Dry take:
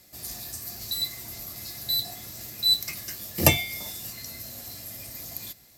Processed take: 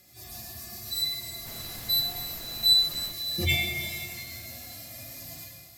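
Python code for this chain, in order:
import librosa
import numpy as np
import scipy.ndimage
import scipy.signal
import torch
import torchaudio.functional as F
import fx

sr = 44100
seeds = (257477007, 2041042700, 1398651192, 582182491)

y = fx.hpss_only(x, sr, part='harmonic')
y = fx.rev_schroeder(y, sr, rt60_s=2.5, comb_ms=28, drr_db=3.0)
y = fx.dmg_noise_colour(y, sr, seeds[0], colour='pink', level_db=-46.0, at=(1.45, 3.11), fade=0.02)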